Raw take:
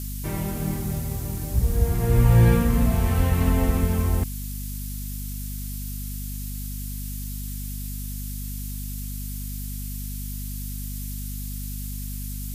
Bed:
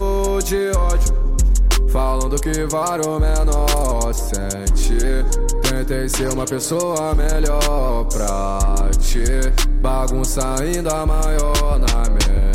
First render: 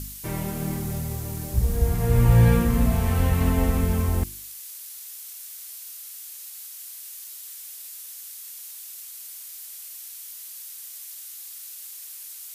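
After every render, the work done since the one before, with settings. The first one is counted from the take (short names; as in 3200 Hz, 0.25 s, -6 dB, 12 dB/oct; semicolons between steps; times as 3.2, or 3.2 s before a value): de-hum 50 Hz, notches 7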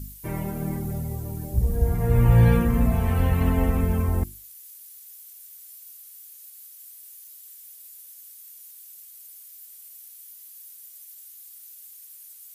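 denoiser 12 dB, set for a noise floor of -40 dBFS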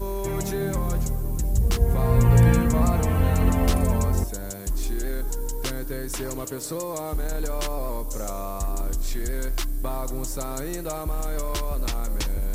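add bed -11 dB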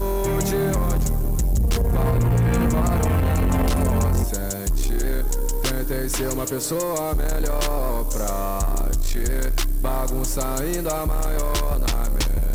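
limiter -14 dBFS, peak gain reduction 7.5 dB; sample leveller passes 2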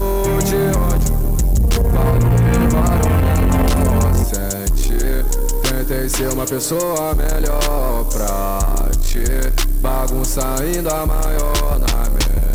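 gain +5.5 dB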